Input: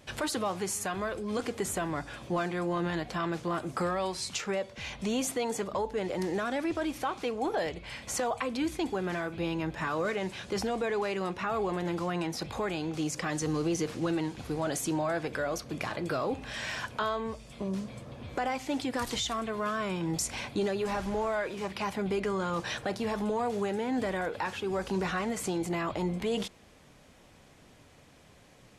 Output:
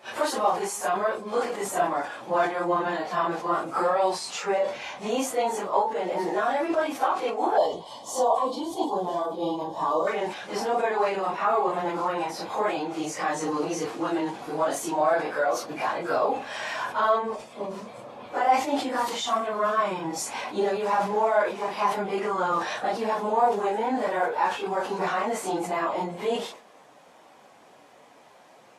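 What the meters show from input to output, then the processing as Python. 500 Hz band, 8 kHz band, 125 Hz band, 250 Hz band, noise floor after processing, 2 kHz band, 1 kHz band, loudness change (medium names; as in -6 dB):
+6.5 dB, +1.0 dB, -6.5 dB, 0.0 dB, -53 dBFS, +4.0 dB, +10.5 dB, +6.0 dB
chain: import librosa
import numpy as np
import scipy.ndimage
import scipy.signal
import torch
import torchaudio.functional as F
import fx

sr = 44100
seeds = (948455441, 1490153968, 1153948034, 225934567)

y = fx.phase_scramble(x, sr, seeds[0], window_ms=100)
y = fx.spec_box(y, sr, start_s=7.57, length_s=2.5, low_hz=1200.0, high_hz=2900.0, gain_db=-18)
y = scipy.signal.sosfilt(scipy.signal.butter(2, 250.0, 'highpass', fs=sr, output='sos'), y)
y = fx.peak_eq(y, sr, hz=840.0, db=11.5, octaves=1.5)
y = fx.sustainer(y, sr, db_per_s=110.0)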